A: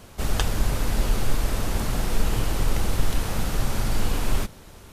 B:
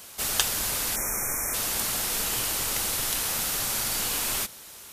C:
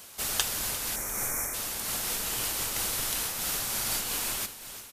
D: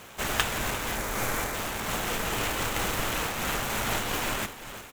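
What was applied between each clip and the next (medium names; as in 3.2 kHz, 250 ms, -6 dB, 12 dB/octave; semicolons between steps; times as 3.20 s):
spectral selection erased 0.96–1.54 s, 2.5–5.4 kHz; tilt EQ +4 dB/octave; trim -2 dB
feedback delay 349 ms, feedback 36%, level -14 dB; random flutter of the level, depth 50%; trim -1 dB
median filter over 9 samples; trim +8.5 dB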